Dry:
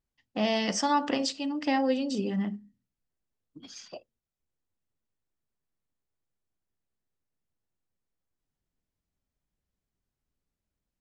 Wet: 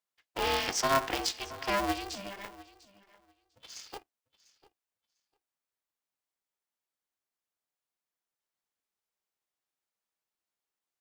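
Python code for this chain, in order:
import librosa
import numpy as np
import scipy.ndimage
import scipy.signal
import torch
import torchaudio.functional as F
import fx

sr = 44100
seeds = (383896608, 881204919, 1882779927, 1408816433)

p1 = scipy.signal.sosfilt(scipy.signal.butter(4, 510.0, 'highpass', fs=sr, output='sos'), x)
p2 = p1 + fx.echo_feedback(p1, sr, ms=698, feedback_pct=15, wet_db=-20.0, dry=0)
y = p2 * np.sign(np.sin(2.0 * np.pi * 200.0 * np.arange(len(p2)) / sr))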